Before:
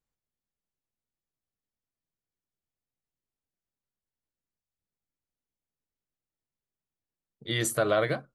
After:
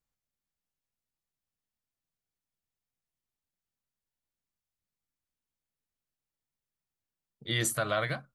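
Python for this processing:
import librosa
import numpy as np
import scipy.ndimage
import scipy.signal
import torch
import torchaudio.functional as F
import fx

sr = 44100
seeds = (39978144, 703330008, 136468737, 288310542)

y = fx.peak_eq(x, sr, hz=400.0, db=fx.steps((0.0, -4.0), (7.72, -13.0)), octaves=1.2)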